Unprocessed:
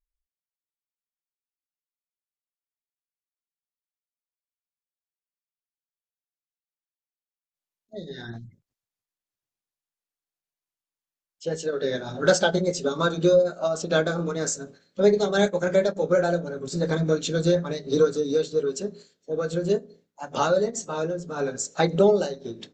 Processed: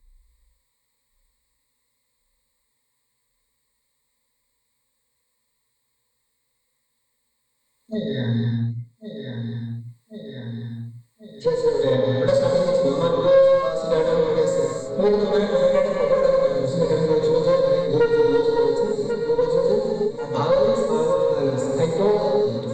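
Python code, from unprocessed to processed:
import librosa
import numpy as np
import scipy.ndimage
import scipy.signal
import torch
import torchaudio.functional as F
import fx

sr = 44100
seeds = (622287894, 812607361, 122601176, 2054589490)

p1 = fx.low_shelf(x, sr, hz=150.0, db=7.5)
p2 = fx.hpss(p1, sr, part='percussive', gain_db=-15)
p3 = fx.ripple_eq(p2, sr, per_octave=0.98, db=16)
p4 = fx.rider(p3, sr, range_db=3, speed_s=0.5)
p5 = p3 + (p4 * 10.0 ** (-2.0 / 20.0))
p6 = fx.tube_stage(p5, sr, drive_db=7.0, bias=0.5)
p7 = p6 + fx.echo_feedback(p6, sr, ms=1090, feedback_pct=52, wet_db=-16, dry=0)
p8 = fx.rev_gated(p7, sr, seeds[0], gate_ms=350, shape='flat', drr_db=-1.0)
p9 = fx.band_squash(p8, sr, depth_pct=70)
y = p9 * 10.0 ** (-4.5 / 20.0)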